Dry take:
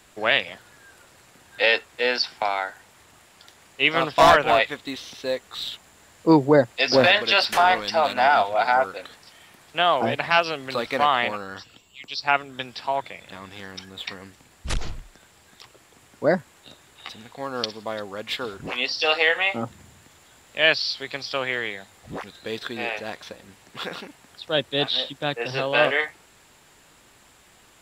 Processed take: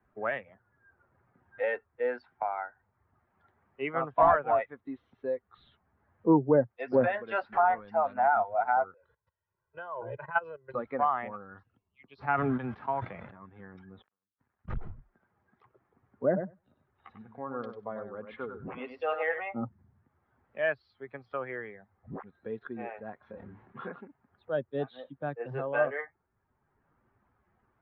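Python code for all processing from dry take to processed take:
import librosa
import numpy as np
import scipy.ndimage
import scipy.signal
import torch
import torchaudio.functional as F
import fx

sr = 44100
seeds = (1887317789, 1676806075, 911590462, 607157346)

y = fx.chain(x, sr, fx.level_steps(step_db=16),
    fx.notch(hz=2100.0, q=17.0),
    fx.comb(ms=2.0, depth=0.8), at=(8.94, 10.74))
y = fx.envelope_flatten(y, sr, power=0.6, at=(12.18, 13.3), fade=0.02)
y = fx.sustainer(y, sr, db_per_s=28.0, at=(12.18, 13.3), fade=0.02)
y = fx.chain(y, sr, fx.dead_time(dead_ms=0.26),
    fx.gate_flip(shuts_db=-33.0, range_db=-29),
    fx.tilt_shelf(db=-5.5, hz=900.0), at=(14.02, 14.68))
y = fx.chain(y, sr, fx.block_float(bits=7),
    fx.echo_feedback(ms=96, feedback_pct=15, wet_db=-6), at=(16.26, 19.4))
y = fx.chain(y, sr, fx.doubler(ms=28.0, db=-3.0),
    fx.sustainer(db_per_s=33.0), at=(23.17, 23.92))
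y = fx.bin_expand(y, sr, power=1.5)
y = scipy.signal.sosfilt(scipy.signal.butter(4, 1500.0, 'lowpass', fs=sr, output='sos'), y)
y = fx.band_squash(y, sr, depth_pct=40)
y = F.gain(torch.from_numpy(y), -1.5).numpy()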